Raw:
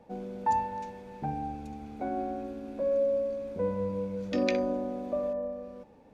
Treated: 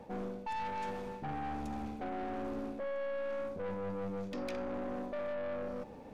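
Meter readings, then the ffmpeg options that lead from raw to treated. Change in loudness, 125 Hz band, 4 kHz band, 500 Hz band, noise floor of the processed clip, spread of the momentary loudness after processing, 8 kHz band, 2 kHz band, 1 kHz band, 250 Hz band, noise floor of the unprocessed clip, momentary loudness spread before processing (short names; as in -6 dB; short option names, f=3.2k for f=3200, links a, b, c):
-7.5 dB, -5.5 dB, -6.5 dB, -7.5 dB, -49 dBFS, 3 LU, n/a, -2.0 dB, -7.0 dB, -6.0 dB, -56 dBFS, 13 LU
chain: -af "areverse,acompressor=threshold=-38dB:ratio=16,areverse,aeval=exprs='(tanh(158*val(0)+0.45)-tanh(0.45))/158':c=same,volume=8.5dB"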